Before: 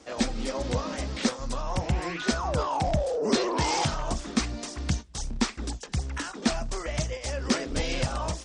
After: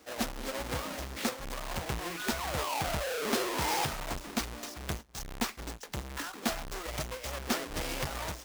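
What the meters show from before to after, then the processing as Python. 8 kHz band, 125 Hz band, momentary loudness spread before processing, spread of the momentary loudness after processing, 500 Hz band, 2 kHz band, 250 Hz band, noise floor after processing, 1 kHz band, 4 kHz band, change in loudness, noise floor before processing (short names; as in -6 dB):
-3.5 dB, -9.5 dB, 7 LU, 9 LU, -7.0 dB, -2.0 dB, -8.5 dB, -48 dBFS, -4.5 dB, -4.0 dB, -5.5 dB, -42 dBFS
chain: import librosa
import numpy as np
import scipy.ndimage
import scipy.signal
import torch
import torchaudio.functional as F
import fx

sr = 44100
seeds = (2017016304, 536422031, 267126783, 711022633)

y = fx.halfwave_hold(x, sr)
y = fx.low_shelf(y, sr, hz=430.0, db=-9.0)
y = F.gain(torch.from_numpy(y), -6.5).numpy()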